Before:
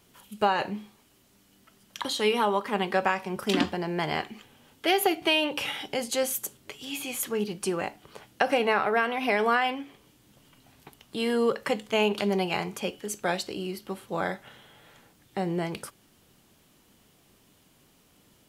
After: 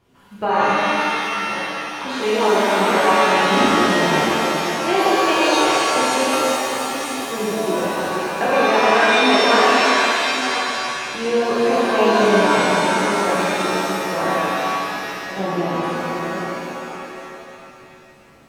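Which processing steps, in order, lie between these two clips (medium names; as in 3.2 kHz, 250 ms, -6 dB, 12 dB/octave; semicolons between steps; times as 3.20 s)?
chunks repeated in reverse 529 ms, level -6 dB; low-pass 1.5 kHz 6 dB/octave; pitch-shifted reverb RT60 2.6 s, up +7 st, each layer -2 dB, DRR -8 dB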